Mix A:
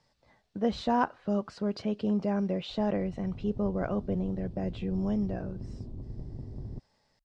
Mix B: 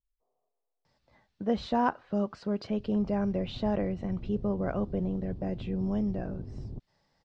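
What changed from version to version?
speech: entry +0.85 s; master: add distance through air 61 m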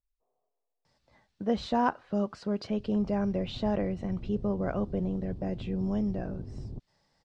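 master: remove distance through air 61 m

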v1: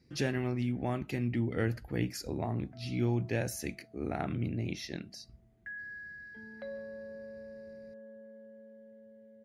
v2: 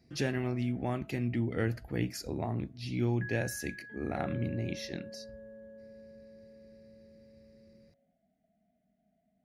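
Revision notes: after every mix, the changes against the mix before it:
background: entry -2.45 s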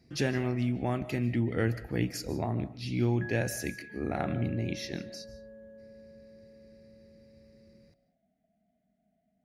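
speech: send on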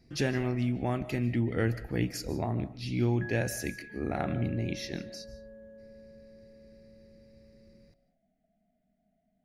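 master: remove high-pass 58 Hz

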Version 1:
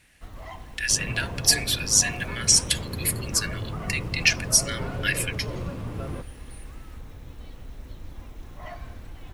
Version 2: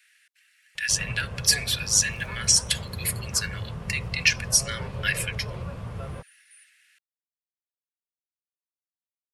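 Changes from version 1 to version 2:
first sound: muted; second sound: add peaking EQ 300 Hz -15 dB 0.64 oct; master: add treble shelf 7.6 kHz -3.5 dB

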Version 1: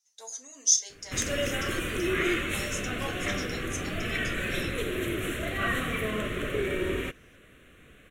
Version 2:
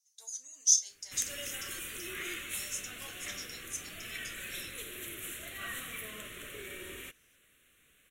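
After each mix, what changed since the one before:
master: add pre-emphasis filter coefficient 0.9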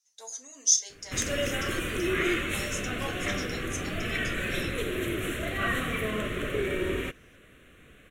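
master: remove pre-emphasis filter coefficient 0.9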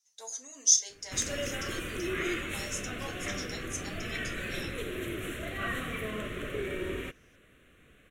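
background -5.5 dB

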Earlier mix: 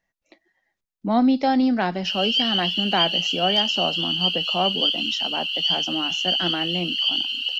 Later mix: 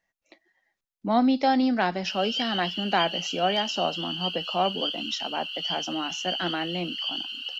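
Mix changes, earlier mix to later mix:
background: add resonant high shelf 2.1 kHz -7 dB, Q 1.5; master: add bass shelf 310 Hz -6.5 dB

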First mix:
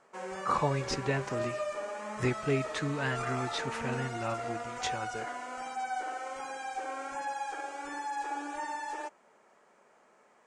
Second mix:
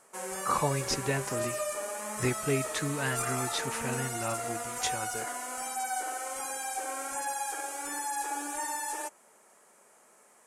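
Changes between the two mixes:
background: remove distance through air 67 m; master: remove distance through air 92 m

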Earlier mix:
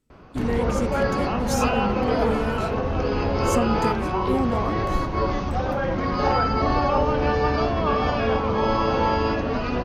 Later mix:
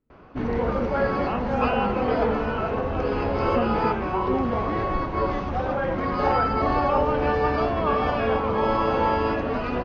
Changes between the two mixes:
speech: add tape spacing loss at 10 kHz 36 dB; master: add tone controls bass -4 dB, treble -12 dB

